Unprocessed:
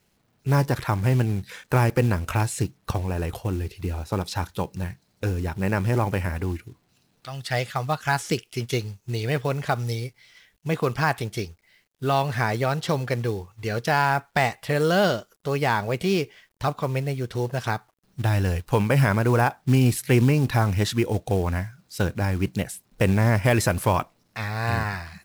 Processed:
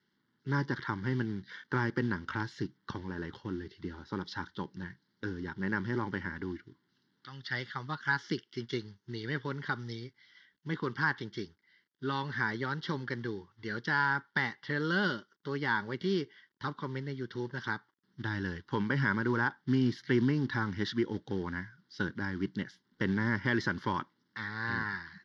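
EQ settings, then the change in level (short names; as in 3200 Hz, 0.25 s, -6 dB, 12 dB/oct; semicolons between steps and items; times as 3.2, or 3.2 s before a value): speaker cabinet 270–4300 Hz, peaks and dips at 490 Hz -10 dB, 720 Hz -5 dB, 1200 Hz -9 dB, 2500 Hz -5 dB, 4000 Hz -8 dB; fixed phaser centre 2500 Hz, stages 6; 0.0 dB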